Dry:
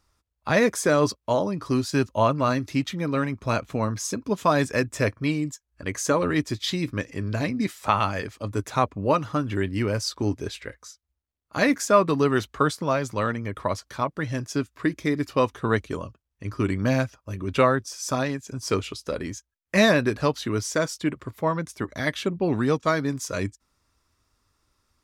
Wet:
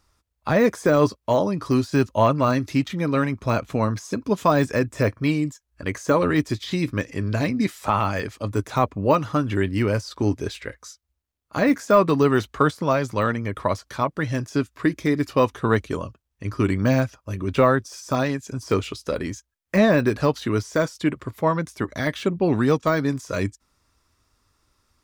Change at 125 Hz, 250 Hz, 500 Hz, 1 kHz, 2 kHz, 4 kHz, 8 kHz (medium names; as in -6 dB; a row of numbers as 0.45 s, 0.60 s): +3.5 dB, +3.5 dB, +3.0 dB, +2.0 dB, +0.5 dB, -2.5 dB, -5.5 dB